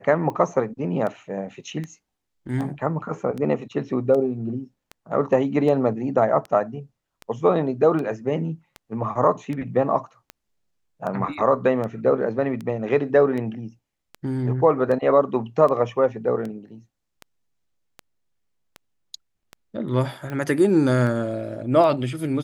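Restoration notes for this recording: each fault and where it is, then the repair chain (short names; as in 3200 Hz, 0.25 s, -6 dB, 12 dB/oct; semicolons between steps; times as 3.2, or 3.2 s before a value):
tick 78 rpm -20 dBFS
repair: de-click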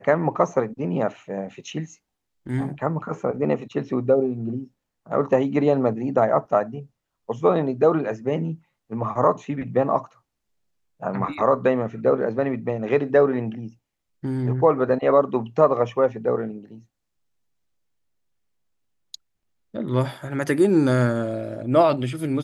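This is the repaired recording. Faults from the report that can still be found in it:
none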